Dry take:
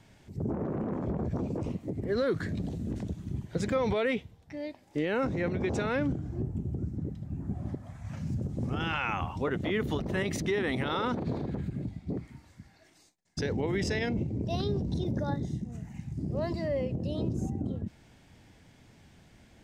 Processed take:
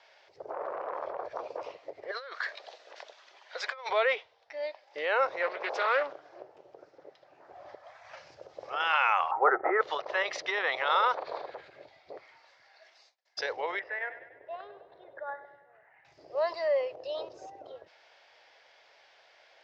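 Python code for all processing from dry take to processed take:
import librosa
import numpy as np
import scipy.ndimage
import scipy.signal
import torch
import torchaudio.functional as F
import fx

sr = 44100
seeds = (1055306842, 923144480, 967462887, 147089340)

y = fx.chain(x, sr, fx.highpass(hz=810.0, slope=12),
    fx.over_compress(threshold_db=-40.0, ratio=-0.5), at=(2.11, 3.89))
y = fx.chain(y, sr, fx.highpass(hz=170.0, slope=12),
    fx.doppler_dist(depth_ms=0.27), at=(5.42, 7.52))
y = fx.chain(y, sr, fx.ellip_lowpass(hz=1900.0, order=4, stop_db=50),
    fx.small_body(hz=(370.0, 780.0, 1300.0), ring_ms=35, db=16), at=(9.31, 9.81))
y = fx.chain(y, sr, fx.ladder_lowpass(hz=2000.0, resonance_pct=50),
    fx.echo_feedback(ms=99, feedback_pct=55, wet_db=-12), at=(13.79, 16.05))
y = scipy.signal.sosfilt(scipy.signal.ellip(3, 1.0, 40, [550.0, 5100.0], 'bandpass', fs=sr, output='sos'), y)
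y = fx.dynamic_eq(y, sr, hz=1100.0, q=1.9, threshold_db=-51.0, ratio=4.0, max_db=6)
y = F.gain(torch.from_numpy(y), 4.5).numpy()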